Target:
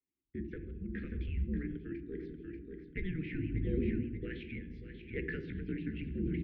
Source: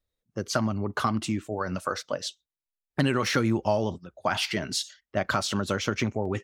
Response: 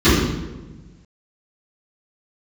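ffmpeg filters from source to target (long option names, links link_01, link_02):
-filter_complex "[0:a]highpass=140,lowshelf=frequency=350:gain=-2.5,bandreject=frequency=60:width_type=h:width=6,bandreject=frequency=120:width_type=h:width=6,bandreject=frequency=180:width_type=h:width=6,asetrate=58866,aresample=44100,atempo=0.749154,highpass=frequency=390:width_type=q:width=0.5412,highpass=frequency=390:width_type=q:width=1.307,lowpass=frequency=2600:width_type=q:width=0.5176,lowpass=frequency=2600:width_type=q:width=0.7071,lowpass=frequency=2600:width_type=q:width=1.932,afreqshift=-350,asuperstop=centerf=890:order=8:qfactor=0.54,aecho=1:1:587|1174|1761|2348:0.282|0.113|0.0451|0.018,asplit=2[link_01][link_02];[1:a]atrim=start_sample=2205[link_03];[link_02][link_03]afir=irnorm=-1:irlink=0,volume=-35.5dB[link_04];[link_01][link_04]amix=inputs=2:normalize=0,tremolo=f=0.76:d=0.57,volume=-2.5dB"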